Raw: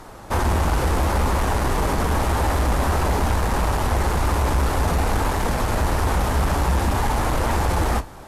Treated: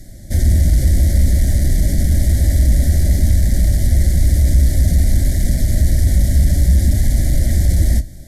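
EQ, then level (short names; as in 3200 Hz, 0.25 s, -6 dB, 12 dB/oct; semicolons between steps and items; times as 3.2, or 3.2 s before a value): Chebyshev band-stop 570–2000 Hz, order 3; low shelf 140 Hz +4 dB; fixed phaser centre 1100 Hz, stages 4; +6.5 dB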